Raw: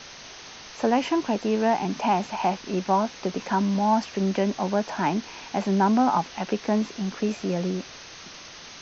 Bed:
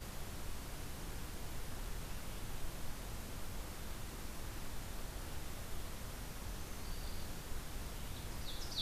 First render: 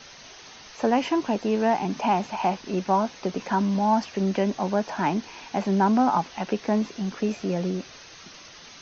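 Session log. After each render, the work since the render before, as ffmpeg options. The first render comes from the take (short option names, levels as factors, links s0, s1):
-af "afftdn=nr=6:nf=-44"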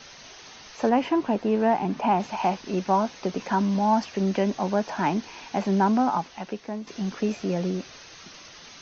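-filter_complex "[0:a]asettb=1/sr,asplit=3[s0][s1][s2];[s0]atrim=end=0.894[s3];[s1]atrim=start=0.89:end=2.2,asetpts=PTS-STARTPTS,afade=t=in:d=0.004:c=qsin,afade=t=out:st=1.306:d=0.004:c=qsin,aemphasis=mode=reproduction:type=75fm[s4];[s2]atrim=start=2.196[s5];[s3][s4]acrossfade=d=0.004:c1=hsin:c2=qsin[s6];[s6][s5]acrossfade=d=0.004:c1=qsin:c2=hsin,asplit=2[s7][s8];[s7]atrim=end=6.87,asetpts=PTS-STARTPTS,afade=t=out:st=5.76:d=1.11:silence=0.237137[s9];[s8]atrim=start=6.87,asetpts=PTS-STARTPTS,afade=t=in:d=0.004:c=hsin:silence=0.237137[s10];[s9][s10]concat=n=2:v=0:a=1"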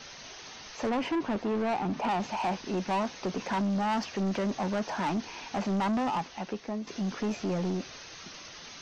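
-af "asoftclip=type=tanh:threshold=0.0531"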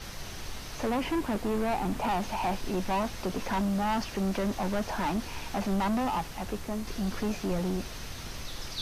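-filter_complex "[1:a]volume=1.58[s0];[0:a][s0]amix=inputs=2:normalize=0"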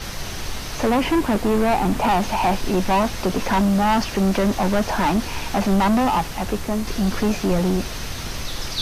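-af "volume=3.35"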